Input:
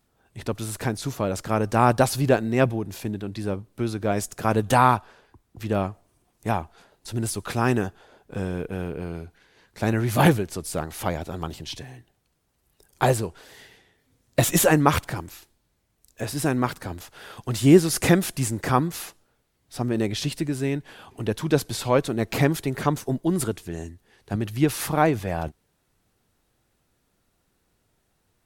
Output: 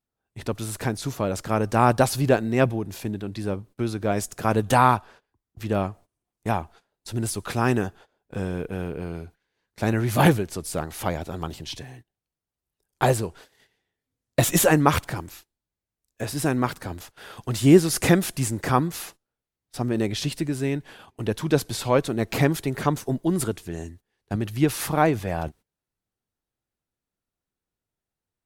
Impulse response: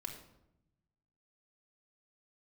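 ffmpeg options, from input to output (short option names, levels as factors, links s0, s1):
-af "agate=range=0.112:threshold=0.00562:ratio=16:detection=peak"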